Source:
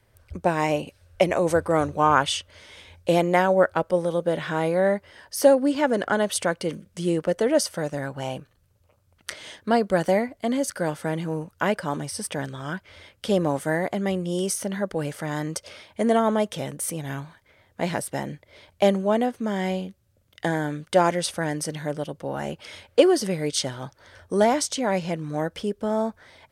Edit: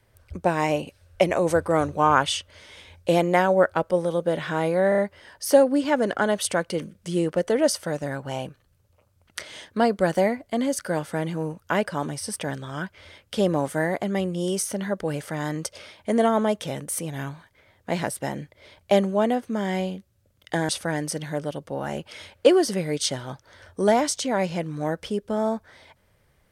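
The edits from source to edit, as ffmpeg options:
ffmpeg -i in.wav -filter_complex "[0:a]asplit=5[link_01][link_02][link_03][link_04][link_05];[link_01]atrim=end=4.922[link_06];[link_02]atrim=start=4.888:end=4.922[link_07];[link_03]atrim=start=4.888:end=4.922[link_08];[link_04]atrim=start=4.888:end=20.602[link_09];[link_05]atrim=start=21.218[link_10];[link_06][link_07]acrossfade=duration=0.004:curve1=hsin:curve2=hsin[link_11];[link_11][link_08]acrossfade=duration=0.004:curve1=hsin:curve2=hsin[link_12];[link_12][link_09]acrossfade=duration=0.004:curve1=hsin:curve2=hsin[link_13];[link_13][link_10]acrossfade=duration=0.004:curve1=hsin:curve2=hsin" out.wav

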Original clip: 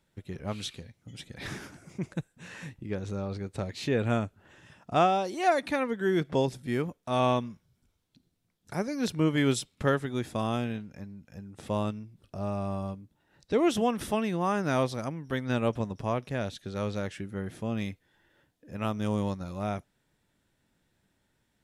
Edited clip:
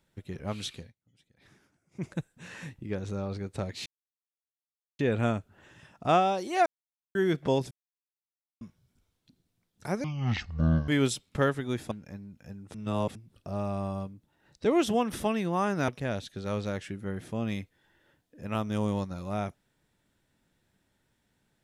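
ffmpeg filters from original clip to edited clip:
ffmpeg -i in.wav -filter_complex "[0:a]asplit=14[link_01][link_02][link_03][link_04][link_05][link_06][link_07][link_08][link_09][link_10][link_11][link_12][link_13][link_14];[link_01]atrim=end=0.95,asetpts=PTS-STARTPTS,afade=type=out:start_time=0.82:duration=0.13:silence=0.0707946[link_15];[link_02]atrim=start=0.95:end=1.91,asetpts=PTS-STARTPTS,volume=-23dB[link_16];[link_03]atrim=start=1.91:end=3.86,asetpts=PTS-STARTPTS,afade=type=in:duration=0.13:silence=0.0707946,afade=type=out:start_time=1.946:duration=0.004:curve=hsin,apad=pad_dur=1.13[link_17];[link_04]atrim=start=3.86:end=5.53,asetpts=PTS-STARTPTS,afade=type=in:duration=0.004:curve=hsin,afade=type=out:start_time=1.666:duration=0.004:curve=hsin[link_18];[link_05]atrim=start=5.53:end=6.02,asetpts=PTS-STARTPTS,volume=0[link_19];[link_06]atrim=start=6.02:end=6.58,asetpts=PTS-STARTPTS,afade=type=in:duration=0.004:curve=hsin,afade=type=out:start_time=0.556:duration=0.004:curve=hsin[link_20];[link_07]atrim=start=6.58:end=7.48,asetpts=PTS-STARTPTS,volume=0[link_21];[link_08]atrim=start=7.48:end=8.914,asetpts=PTS-STARTPTS,afade=type=in:duration=0.004:curve=hsin[link_22];[link_09]atrim=start=8.91:end=9.34,asetpts=PTS-STARTPTS,asetrate=22491,aresample=44100,atrim=end_sample=37182,asetpts=PTS-STARTPTS[link_23];[link_10]atrim=start=9.336:end=10.372[link_24];[link_11]atrim=start=10.788:end=11.622[link_25];[link_12]atrim=start=11.618:end=12.032,asetpts=PTS-STARTPTS,areverse[link_26];[link_13]atrim=start=12.028:end=14.762[link_27];[link_14]atrim=start=16.178[link_28];[link_15][link_16][link_17][link_18][link_19][link_20][link_21][link_22]concat=n=8:v=0:a=1[link_29];[link_29][link_23]acrossfade=duration=0.004:curve1=hsin:curve2=hsin[link_30];[link_30][link_24]acrossfade=duration=0.004:curve1=hsin:curve2=hsin[link_31];[link_31][link_25]acrossfade=duration=0.004:curve1=hsin:curve2=hsin[link_32];[link_32][link_26]acrossfade=duration=0.004:curve1=hsin:curve2=hsin[link_33];[link_33][link_27]acrossfade=duration=0.004:curve1=hsin:curve2=hsin[link_34];[link_34][link_28]acrossfade=duration=0.004:curve1=hsin:curve2=hsin" out.wav

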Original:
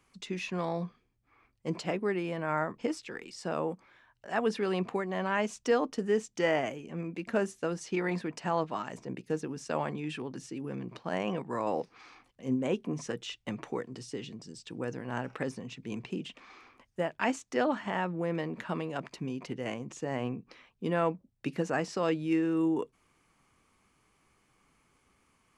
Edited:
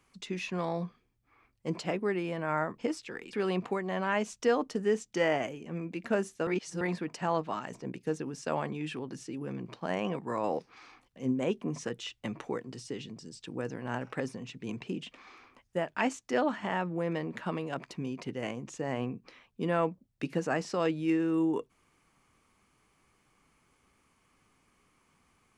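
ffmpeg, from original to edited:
ffmpeg -i in.wav -filter_complex "[0:a]asplit=4[link_01][link_02][link_03][link_04];[link_01]atrim=end=3.332[link_05];[link_02]atrim=start=4.558:end=7.702[link_06];[link_03]atrim=start=7.698:end=8.042,asetpts=PTS-STARTPTS,areverse[link_07];[link_04]atrim=start=8.038[link_08];[link_05][link_06]acrossfade=duration=0.004:curve1=hsin:curve2=hsin[link_09];[link_09][link_07]acrossfade=duration=0.004:curve1=hsin:curve2=hsin[link_10];[link_10][link_08]acrossfade=duration=0.004:curve1=hsin:curve2=hsin" out.wav

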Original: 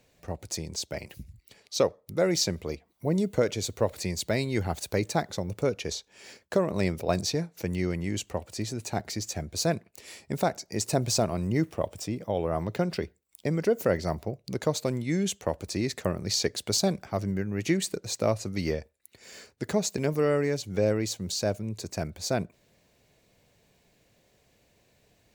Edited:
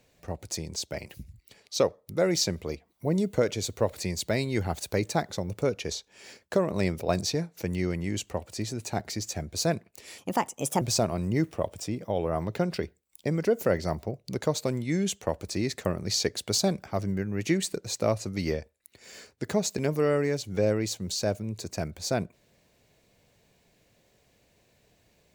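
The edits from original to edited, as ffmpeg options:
ffmpeg -i in.wav -filter_complex "[0:a]asplit=3[link_01][link_02][link_03];[link_01]atrim=end=10.184[link_04];[link_02]atrim=start=10.18:end=11.01,asetpts=PTS-STARTPTS,asetrate=57771,aresample=44100,atrim=end_sample=27941,asetpts=PTS-STARTPTS[link_05];[link_03]atrim=start=11.006[link_06];[link_04][link_05]acrossfade=duration=0.004:curve1=hsin:curve2=hsin[link_07];[link_07][link_06]acrossfade=duration=0.004:curve1=hsin:curve2=hsin" out.wav

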